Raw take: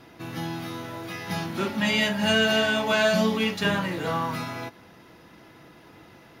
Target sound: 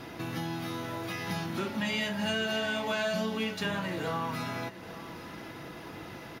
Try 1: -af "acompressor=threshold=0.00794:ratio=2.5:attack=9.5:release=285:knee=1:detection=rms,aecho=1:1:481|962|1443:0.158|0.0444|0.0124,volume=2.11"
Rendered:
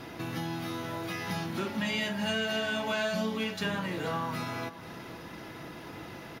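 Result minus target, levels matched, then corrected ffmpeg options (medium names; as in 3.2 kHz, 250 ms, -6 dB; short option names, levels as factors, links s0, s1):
echo 347 ms early
-af "acompressor=threshold=0.00794:ratio=2.5:attack=9.5:release=285:knee=1:detection=rms,aecho=1:1:828|1656|2484:0.158|0.0444|0.0124,volume=2.11"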